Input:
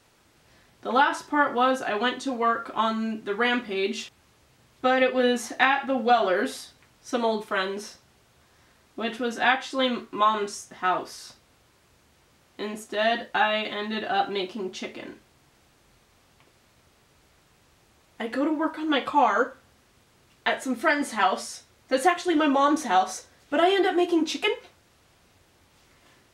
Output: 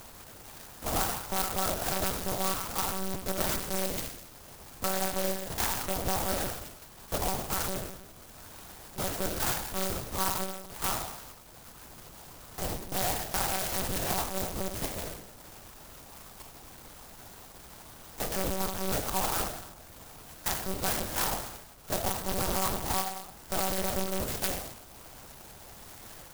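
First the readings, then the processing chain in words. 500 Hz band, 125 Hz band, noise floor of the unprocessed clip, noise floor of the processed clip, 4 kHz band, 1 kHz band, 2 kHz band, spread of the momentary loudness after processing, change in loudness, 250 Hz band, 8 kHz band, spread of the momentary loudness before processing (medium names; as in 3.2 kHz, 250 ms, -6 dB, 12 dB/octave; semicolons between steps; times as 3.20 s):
-9.5 dB, +10.0 dB, -62 dBFS, -51 dBFS, -5.0 dB, -10.0 dB, -12.0 dB, 18 LU, -6.5 dB, -10.5 dB, +7.5 dB, 14 LU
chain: cycle switcher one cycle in 2, muted; bass shelf 340 Hz -11.5 dB; compression 6:1, threshold -33 dBFS, peak gain reduction 14.5 dB; saturation -22.5 dBFS, distortion -24 dB; upward compressor, threshold -42 dBFS; Schroeder reverb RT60 1 s, combs from 25 ms, DRR 3.5 dB; monotone LPC vocoder at 8 kHz 190 Hz; sampling jitter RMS 0.14 ms; trim +6.5 dB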